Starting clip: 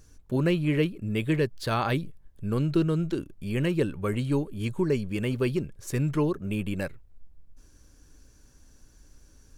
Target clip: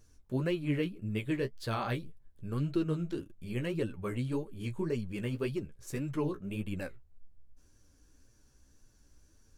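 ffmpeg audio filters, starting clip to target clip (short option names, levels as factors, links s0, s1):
-af "flanger=delay=8.5:depth=8.4:regen=22:speed=1.8:shape=sinusoidal,volume=0.631"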